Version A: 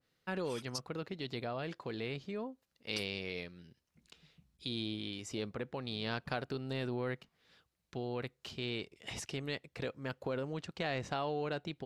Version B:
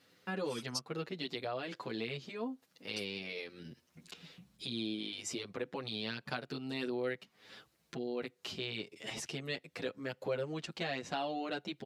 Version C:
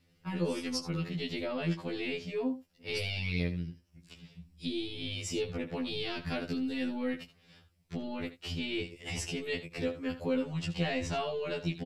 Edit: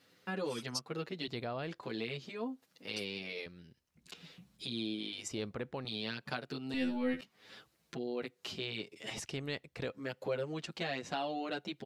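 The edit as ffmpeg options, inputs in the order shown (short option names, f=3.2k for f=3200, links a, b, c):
-filter_complex "[0:a]asplit=4[a][b][c][d];[1:a]asplit=6[e][f][g][h][i][j];[e]atrim=end=1.282[k];[a]atrim=start=1.278:end=1.832[l];[f]atrim=start=1.828:end=3.462[m];[b]atrim=start=3.458:end=4.062[n];[g]atrim=start=4.058:end=5.282[o];[c]atrim=start=5.278:end=5.852[p];[h]atrim=start=5.848:end=6.742[q];[2:a]atrim=start=6.738:end=7.212[r];[i]atrim=start=7.208:end=9.182[s];[d]atrim=start=9.178:end=9.912[t];[j]atrim=start=9.908[u];[k][l]acrossfade=d=0.004:c1=hsin:c2=hsin[v];[v][m]acrossfade=d=0.004:c1=hsin:c2=hsin[w];[w][n]acrossfade=d=0.004:c1=hsin:c2=hsin[x];[x][o]acrossfade=d=0.004:c1=hsin:c2=hsin[y];[y][p]acrossfade=d=0.004:c1=hsin:c2=hsin[z];[z][q]acrossfade=d=0.004:c1=hsin:c2=hsin[aa];[aa][r]acrossfade=d=0.004:c1=hsin:c2=hsin[ab];[ab][s]acrossfade=d=0.004:c1=hsin:c2=hsin[ac];[ac][t]acrossfade=d=0.004:c1=hsin:c2=hsin[ad];[ad][u]acrossfade=d=0.004:c1=hsin:c2=hsin"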